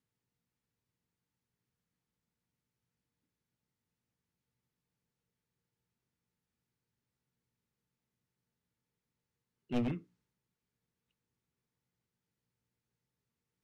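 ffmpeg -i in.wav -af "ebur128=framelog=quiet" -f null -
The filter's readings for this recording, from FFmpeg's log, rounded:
Integrated loudness:
  I:         -37.4 LUFS
  Threshold: -48.0 LUFS
Loudness range:
  LRA:         2.8 LU
  Threshold: -64.6 LUFS
  LRA low:   -47.2 LUFS
  LRA high:  -44.4 LUFS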